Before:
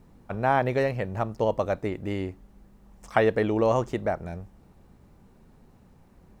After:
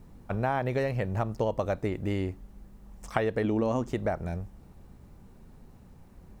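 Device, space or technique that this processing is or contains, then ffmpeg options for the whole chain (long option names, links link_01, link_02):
ASMR close-microphone chain: -filter_complex "[0:a]asettb=1/sr,asplit=3[link_01][link_02][link_03];[link_01]atrim=end=3.444[link_04];[link_02]atrim=start=3.44:end=3.9,asetpts=PTS-STARTPTS,afade=type=in:duration=0.004:curve=qsin,afade=type=out:start_time=0.456:duration=0.004:curve=qsin,equalizer=frequency=250:width_type=o:width=0.4:gain=12[link_05];[link_03]atrim=start=3.896[link_06];[link_04][link_05]acrossfade=duration=0.004:curve1=hsin:curve2=qsin[link_07];[link_07][link_06]acrossfade=duration=0.004:curve1=qsin:curve2=hsin,lowshelf=frequency=130:gain=6,acompressor=threshold=-24dB:ratio=6,highshelf=frequency=6000:gain=4"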